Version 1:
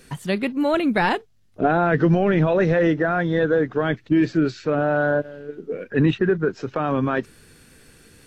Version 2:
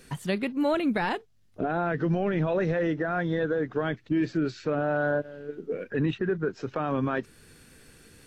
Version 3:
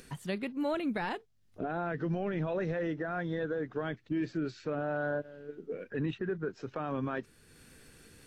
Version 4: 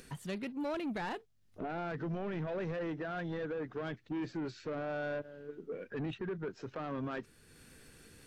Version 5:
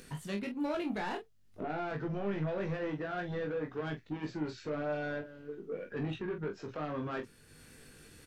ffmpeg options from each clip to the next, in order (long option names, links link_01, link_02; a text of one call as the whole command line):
ffmpeg -i in.wav -af "alimiter=limit=-15dB:level=0:latency=1:release=306,volume=-3dB" out.wav
ffmpeg -i in.wav -af "acompressor=mode=upward:threshold=-42dB:ratio=2.5,volume=-7dB" out.wav
ffmpeg -i in.wav -af "asoftclip=type=tanh:threshold=-31.5dB,volume=-1dB" out.wav
ffmpeg -i in.wav -af "aecho=1:1:20|45:0.631|0.376" out.wav